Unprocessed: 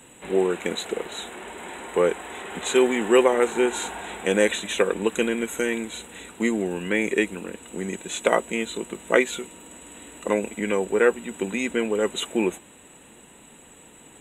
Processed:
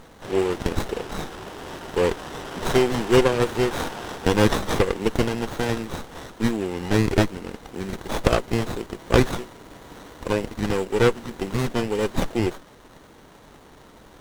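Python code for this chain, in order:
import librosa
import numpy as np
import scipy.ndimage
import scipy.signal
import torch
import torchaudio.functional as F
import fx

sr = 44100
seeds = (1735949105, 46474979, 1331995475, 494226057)

y = fx.weighting(x, sr, curve='D')
y = fx.running_max(y, sr, window=17)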